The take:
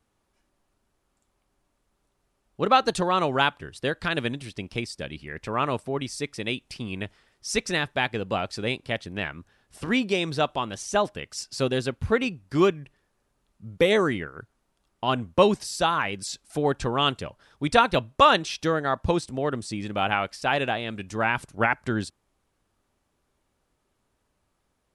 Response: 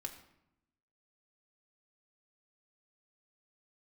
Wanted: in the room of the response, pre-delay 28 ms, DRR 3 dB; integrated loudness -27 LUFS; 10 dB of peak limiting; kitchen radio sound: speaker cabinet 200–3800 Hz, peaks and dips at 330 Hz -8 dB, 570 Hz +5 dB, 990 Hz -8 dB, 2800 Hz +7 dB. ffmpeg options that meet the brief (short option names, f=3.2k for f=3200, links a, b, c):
-filter_complex "[0:a]alimiter=limit=-13dB:level=0:latency=1,asplit=2[a][b];[1:a]atrim=start_sample=2205,adelay=28[c];[b][c]afir=irnorm=-1:irlink=0,volume=-0.5dB[d];[a][d]amix=inputs=2:normalize=0,highpass=200,equalizer=f=330:t=q:w=4:g=-8,equalizer=f=570:t=q:w=4:g=5,equalizer=f=990:t=q:w=4:g=-8,equalizer=f=2.8k:t=q:w=4:g=7,lowpass=f=3.8k:w=0.5412,lowpass=f=3.8k:w=1.3066,volume=-1dB"